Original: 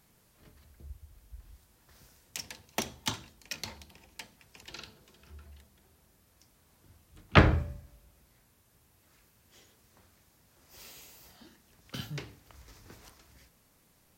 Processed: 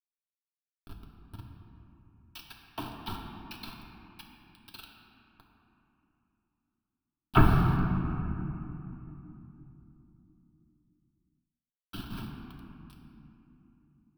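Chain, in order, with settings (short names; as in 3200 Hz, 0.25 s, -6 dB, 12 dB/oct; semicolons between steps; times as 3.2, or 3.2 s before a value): whisperiser; LPF 3700 Hz 6 dB/oct; treble ducked by the level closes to 1900 Hz, closed at -36 dBFS; bit-crush 7-bit; fixed phaser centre 2000 Hz, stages 6; reverb RT60 3.1 s, pre-delay 3 ms, DRR -1 dB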